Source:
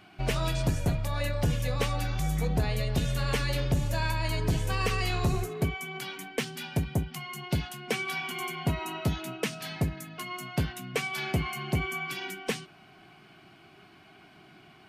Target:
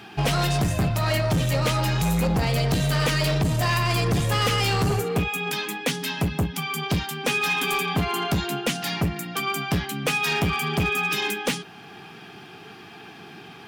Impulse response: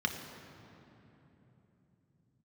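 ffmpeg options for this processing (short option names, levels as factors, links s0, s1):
-filter_complex "[0:a]highpass=72,asplit=2[s0][s1];[s1]alimiter=level_in=1.06:limit=0.0631:level=0:latency=1:release=499,volume=0.944,volume=0.891[s2];[s0][s2]amix=inputs=2:normalize=0,asoftclip=type=hard:threshold=0.0596,asetrate=48000,aresample=44100,volume=2"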